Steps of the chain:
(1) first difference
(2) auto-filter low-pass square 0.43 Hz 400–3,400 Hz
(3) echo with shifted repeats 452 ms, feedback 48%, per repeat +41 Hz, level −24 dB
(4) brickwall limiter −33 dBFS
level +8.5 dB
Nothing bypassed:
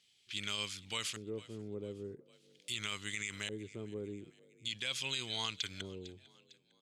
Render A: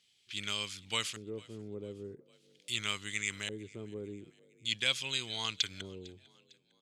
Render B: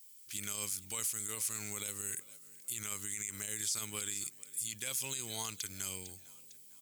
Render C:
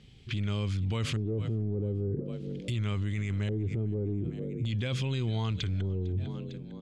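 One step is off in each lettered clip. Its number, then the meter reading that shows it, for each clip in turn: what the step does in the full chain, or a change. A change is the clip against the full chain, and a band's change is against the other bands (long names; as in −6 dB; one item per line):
4, change in crest factor +7.5 dB
2, 8 kHz band +17.0 dB
1, 125 Hz band +19.0 dB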